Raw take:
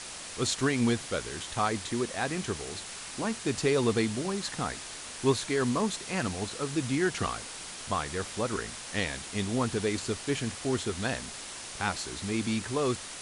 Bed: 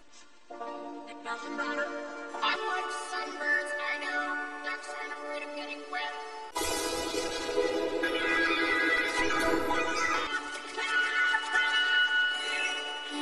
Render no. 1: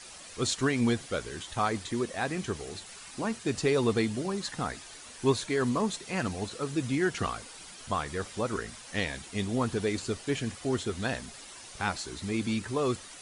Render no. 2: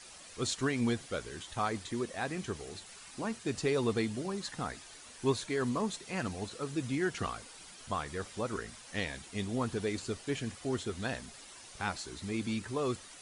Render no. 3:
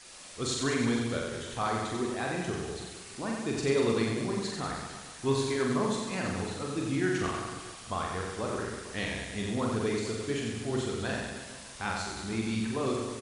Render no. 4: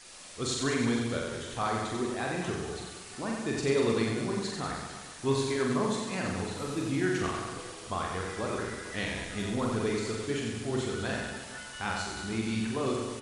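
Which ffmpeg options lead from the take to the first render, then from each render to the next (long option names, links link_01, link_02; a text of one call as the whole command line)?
ffmpeg -i in.wav -af "afftdn=noise_reduction=9:noise_floor=-42" out.wav
ffmpeg -i in.wav -af "volume=-4.5dB" out.wav
ffmpeg -i in.wav -filter_complex "[0:a]asplit=2[link_01][link_02];[link_02]adelay=44,volume=-3.5dB[link_03];[link_01][link_03]amix=inputs=2:normalize=0,aecho=1:1:90|193.5|312.5|449.4|606.8:0.631|0.398|0.251|0.158|0.1" out.wav
ffmpeg -i in.wav -i bed.wav -filter_complex "[1:a]volume=-19dB[link_01];[0:a][link_01]amix=inputs=2:normalize=0" out.wav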